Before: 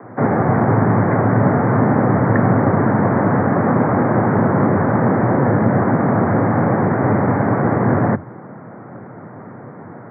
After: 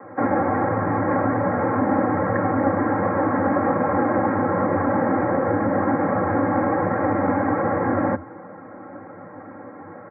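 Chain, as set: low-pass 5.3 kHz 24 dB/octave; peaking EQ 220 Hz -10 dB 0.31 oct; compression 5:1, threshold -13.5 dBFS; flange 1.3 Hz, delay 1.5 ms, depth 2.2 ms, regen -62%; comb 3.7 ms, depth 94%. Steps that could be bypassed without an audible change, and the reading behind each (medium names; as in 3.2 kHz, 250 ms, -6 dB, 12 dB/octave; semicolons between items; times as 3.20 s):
low-pass 5.3 kHz: input has nothing above 2 kHz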